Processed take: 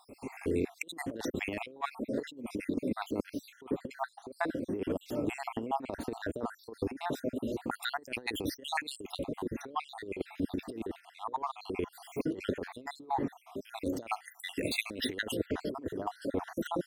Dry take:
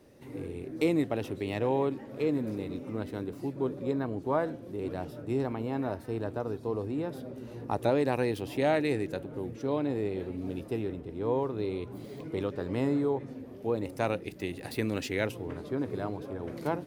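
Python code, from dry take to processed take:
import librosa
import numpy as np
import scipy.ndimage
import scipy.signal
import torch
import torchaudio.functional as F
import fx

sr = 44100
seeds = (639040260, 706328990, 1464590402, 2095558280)

y = fx.spec_dropout(x, sr, seeds[0], share_pct=63)
y = fx.graphic_eq(y, sr, hz=(125, 250, 8000), db=(-10, 4, 3))
y = fx.over_compress(y, sr, threshold_db=-38.0, ratio=-0.5)
y = F.gain(torch.from_numpy(y), 4.5).numpy()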